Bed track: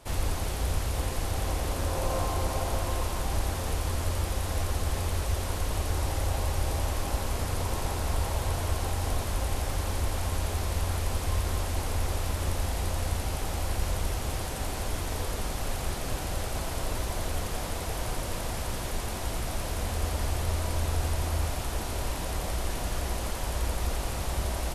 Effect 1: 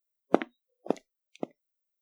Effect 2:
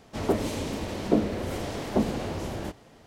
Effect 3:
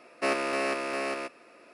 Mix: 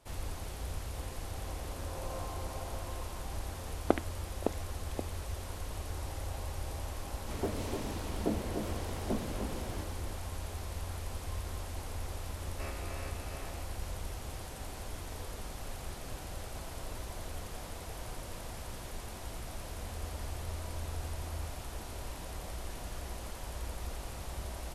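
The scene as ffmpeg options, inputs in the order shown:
-filter_complex "[0:a]volume=0.299[s0];[2:a]aecho=1:1:300:0.501[s1];[1:a]atrim=end=2.01,asetpts=PTS-STARTPTS,volume=0.631,afade=t=in:d=0.004:c=hsin,afade=t=out:st=2.006:d=0.004:c=hsin,adelay=3560[s2];[s1]atrim=end=3.06,asetpts=PTS-STARTPTS,volume=0.299,afade=t=in:d=0.004:c=hsin,afade=t=out:st=3.056:d=0.004:c=hsin,adelay=314874S[s3];[3:a]atrim=end=1.73,asetpts=PTS-STARTPTS,volume=0.126,afade=t=in:d=0.004:c=hsin,afade=t=out:st=1.726:d=0.004:c=hsin,adelay=12370[s4];[s0][s2][s3][s4]amix=inputs=4:normalize=0"

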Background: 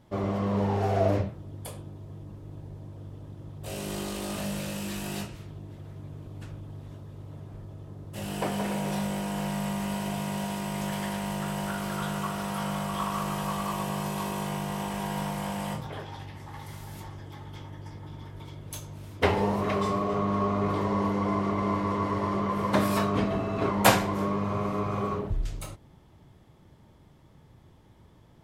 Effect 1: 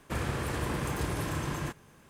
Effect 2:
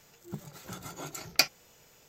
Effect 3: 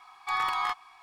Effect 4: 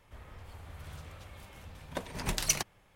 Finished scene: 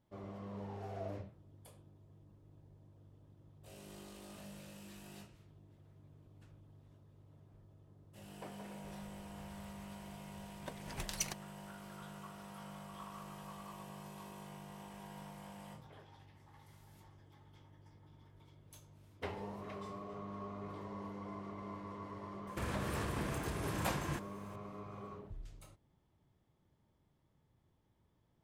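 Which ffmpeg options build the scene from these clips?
-filter_complex "[0:a]volume=0.112[s0];[1:a]alimiter=level_in=1.78:limit=0.0631:level=0:latency=1:release=384,volume=0.562[s1];[4:a]atrim=end=2.95,asetpts=PTS-STARTPTS,volume=0.316,afade=t=in:d=0.004:c=hsin,afade=t=out:st=2.946:d=0.004:c=hsin,adelay=8710[s2];[s1]atrim=end=2.09,asetpts=PTS-STARTPTS,volume=0.944,afade=t=in:d=0.004:c=hsin,afade=t=out:st=2.086:d=0.004:c=hsin,adelay=22470[s3];[s0][s2][s3]amix=inputs=3:normalize=0"

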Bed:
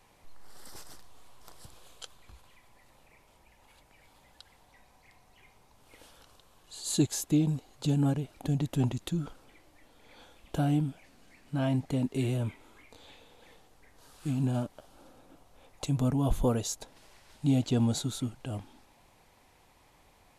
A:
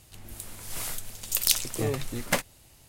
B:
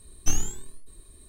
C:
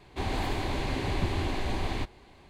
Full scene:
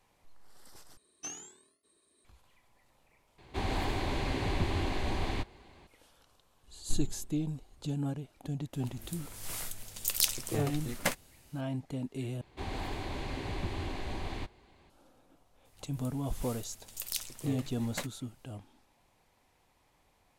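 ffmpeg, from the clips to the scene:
-filter_complex "[2:a]asplit=2[s0][s1];[3:a]asplit=2[s2][s3];[1:a]asplit=2[s4][s5];[0:a]volume=0.422[s6];[s0]highpass=330,lowpass=7100[s7];[s1]tiltshelf=f=660:g=9.5[s8];[s6]asplit=4[s9][s10][s11][s12];[s9]atrim=end=0.974[s13];[s7]atrim=end=1.28,asetpts=PTS-STARTPTS,volume=0.316[s14];[s10]atrim=start=2.246:end=3.384[s15];[s2]atrim=end=2.49,asetpts=PTS-STARTPTS,volume=0.794[s16];[s11]atrim=start=5.866:end=12.414[s17];[s3]atrim=end=2.49,asetpts=PTS-STARTPTS,volume=0.447[s18];[s12]atrim=start=14.896[s19];[s8]atrim=end=1.28,asetpts=PTS-STARTPTS,volume=0.141,afade=t=in:d=0.004:c=hsin,afade=t=out:st=1.276:d=0.004:c=hsin,adelay=6630[s20];[s4]atrim=end=2.88,asetpts=PTS-STARTPTS,volume=0.562,afade=t=in:d=0.004:c=hsin,afade=t=out:st=2.876:d=0.004:c=hsin,adelay=8730[s21];[s5]atrim=end=2.88,asetpts=PTS-STARTPTS,volume=0.224,afade=t=in:d=0.004:c=hsin,afade=t=out:st=2.876:d=0.004:c=hsin,adelay=15650[s22];[s13][s14]acrossfade=d=0.004:c1=hsin:c2=hsin[s23];[s23][s15]acrossfade=d=0.004:c1=hsin:c2=hsin[s24];[s24][s16]acrossfade=d=0.004:c1=hsin:c2=hsin[s25];[s25][s17]acrossfade=d=0.004:c1=hsin:c2=hsin[s26];[s26][s18]acrossfade=d=0.004:c1=hsin:c2=hsin[s27];[s27][s19]acrossfade=d=0.004:c1=hsin:c2=hsin[s28];[s28][s20][s21][s22]amix=inputs=4:normalize=0"

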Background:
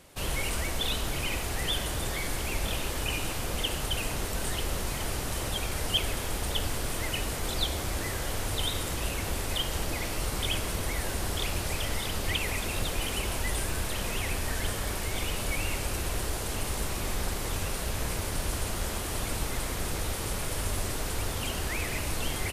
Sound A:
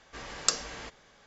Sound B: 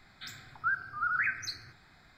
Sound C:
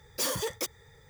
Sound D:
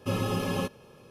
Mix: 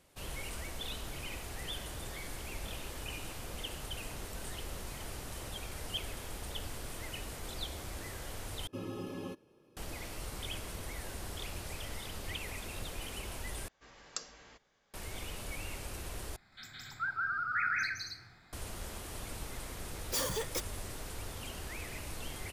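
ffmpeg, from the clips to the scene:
-filter_complex "[0:a]volume=0.282[s0];[4:a]equalizer=f=320:w=2.8:g=14[s1];[2:a]aecho=1:1:163.3|204.1|271.1:1|0.562|0.794[s2];[s0]asplit=4[s3][s4][s5][s6];[s3]atrim=end=8.674[s7];[s1]atrim=end=1.1,asetpts=PTS-STARTPTS,volume=0.158[s8];[s4]atrim=start=9.766:end=13.684[s9];[1:a]atrim=end=1.26,asetpts=PTS-STARTPTS,volume=0.188[s10];[s5]atrim=start=14.936:end=16.364[s11];[s2]atrim=end=2.17,asetpts=PTS-STARTPTS,volume=0.501[s12];[s6]atrim=start=18.526[s13];[3:a]atrim=end=1.09,asetpts=PTS-STARTPTS,volume=0.631,afade=t=in:d=0.004:c=hsin,afade=t=out:st=1.086:d=0.004:c=hsin,adelay=19940[s14];[s7][s8]acrossfade=d=0.004:c1=hsin:c2=hsin[s15];[s15][s9]acrossfade=d=0.004:c1=hsin:c2=hsin[s16];[s16][s10]acrossfade=d=0.004:c1=hsin:c2=hsin[s17];[s17][s11]acrossfade=d=0.004:c1=hsin:c2=hsin[s18];[s18][s12]acrossfade=d=0.004:c1=hsin:c2=hsin[s19];[s19][s13]acrossfade=d=0.004:c1=hsin:c2=hsin[s20];[s20][s14]amix=inputs=2:normalize=0"

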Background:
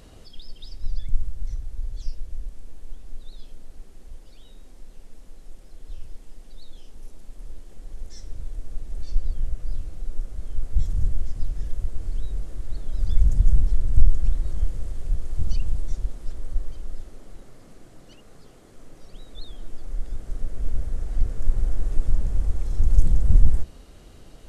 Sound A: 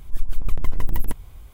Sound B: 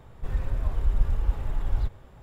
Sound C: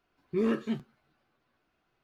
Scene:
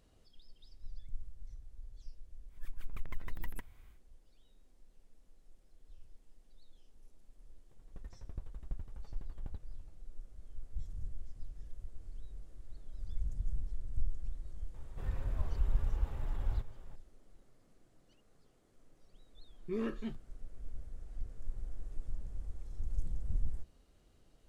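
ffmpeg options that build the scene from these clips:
-filter_complex "[2:a]asplit=2[s0][s1];[0:a]volume=0.112[s2];[1:a]equalizer=f=1900:t=o:w=1.2:g=11.5[s3];[s0]aeval=exprs='val(0)*pow(10,-30*if(lt(mod(12*n/s,1),2*abs(12)/1000),1-mod(12*n/s,1)/(2*abs(12)/1000),(mod(12*n/s,1)-2*abs(12)/1000)/(1-2*abs(12)/1000))/20)':c=same[s4];[s3]atrim=end=1.53,asetpts=PTS-STARTPTS,volume=0.126,afade=t=in:d=0.1,afade=t=out:st=1.43:d=0.1,adelay=2480[s5];[s4]atrim=end=2.22,asetpts=PTS-STARTPTS,volume=0.188,afade=t=in:d=0.004:c=hsin,afade=t=out:st=2.216:d=0.004:c=hsin,adelay=7710[s6];[s1]atrim=end=2.22,asetpts=PTS-STARTPTS,volume=0.376,afade=t=in:d=0.004:c=hsin,afade=t=out:st=2.216:d=0.004:c=hsin,adelay=14740[s7];[3:a]atrim=end=2.03,asetpts=PTS-STARTPTS,volume=0.355,afade=t=in:d=0.004:c=hsin,afade=t=out:st=2.026:d=0.004:c=hsin,adelay=19350[s8];[s2][s5][s6][s7][s8]amix=inputs=5:normalize=0"

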